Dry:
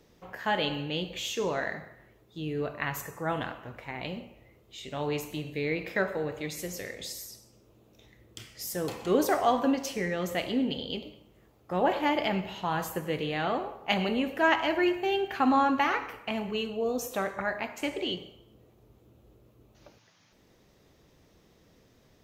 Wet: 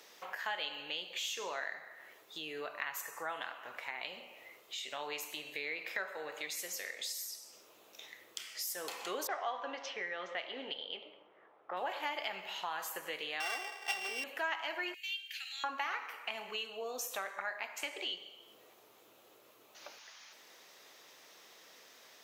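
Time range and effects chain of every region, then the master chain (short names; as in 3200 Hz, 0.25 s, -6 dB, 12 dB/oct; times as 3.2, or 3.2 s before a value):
9.27–11.77 low-pass opened by the level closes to 1400 Hz, open at -21.5 dBFS + speaker cabinet 150–4900 Hz, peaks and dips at 240 Hz -6 dB, 2600 Hz -4 dB, 4500 Hz -9 dB
13.4–14.24 sample sorter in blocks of 16 samples + high shelf 11000 Hz -11 dB + comb 2.6 ms, depth 70%
14.94–15.64 inverse Chebyshev band-stop 140–1100 Hz, stop band 50 dB + bell 680 Hz +12 dB 0.92 oct
whole clip: Bessel high-pass 1100 Hz, order 2; compressor 2.5:1, threshold -55 dBFS; gain +11 dB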